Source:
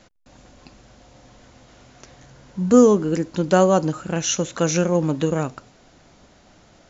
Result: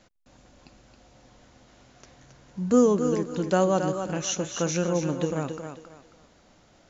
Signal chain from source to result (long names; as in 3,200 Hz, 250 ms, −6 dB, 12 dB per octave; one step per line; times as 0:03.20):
feedback echo with a high-pass in the loop 271 ms, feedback 30%, high-pass 190 Hz, level −7 dB
level −6.5 dB